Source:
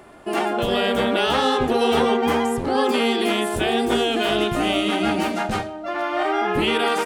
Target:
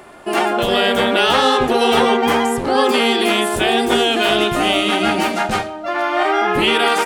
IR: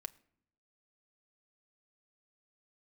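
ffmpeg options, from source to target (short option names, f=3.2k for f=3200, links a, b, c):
-filter_complex "[0:a]asplit=2[a][b];[1:a]atrim=start_sample=2205,lowshelf=f=320:g=-12[c];[b][c]afir=irnorm=-1:irlink=0,volume=10dB[d];[a][d]amix=inputs=2:normalize=0,volume=-2.5dB"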